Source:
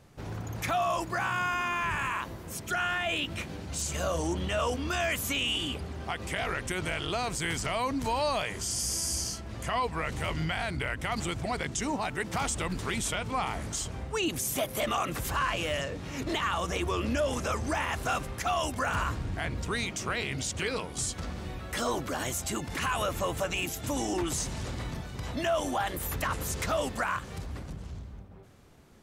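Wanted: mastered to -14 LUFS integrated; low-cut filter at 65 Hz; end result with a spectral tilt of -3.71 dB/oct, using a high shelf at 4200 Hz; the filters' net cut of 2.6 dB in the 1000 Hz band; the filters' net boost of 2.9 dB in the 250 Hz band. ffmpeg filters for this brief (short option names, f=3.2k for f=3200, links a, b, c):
-af "highpass=65,equalizer=f=250:t=o:g=4,equalizer=f=1k:t=o:g=-4,highshelf=f=4.2k:g=5,volume=16.5dB"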